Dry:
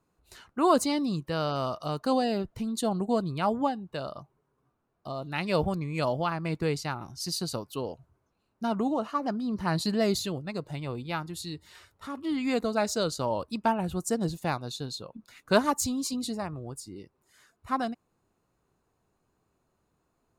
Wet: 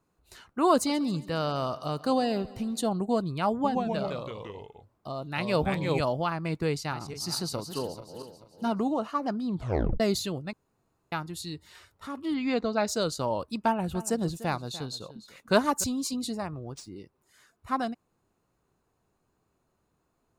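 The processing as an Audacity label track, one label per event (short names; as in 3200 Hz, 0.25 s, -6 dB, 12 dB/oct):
0.730000	2.880000	feedback echo 0.137 s, feedback 60%, level -20 dB
3.530000	6.010000	echoes that change speed 0.111 s, each echo -2 st, echoes 3
6.700000	8.850000	regenerating reverse delay 0.218 s, feedback 55%, level -9 dB
9.480000	9.480000	tape stop 0.52 s
10.530000	11.120000	room tone
12.340000	12.880000	LPF 5400 Hz 24 dB/oct
13.560000	15.840000	echo 0.295 s -16 dB
16.550000	16.960000	decimation joined by straight lines rate divided by 3×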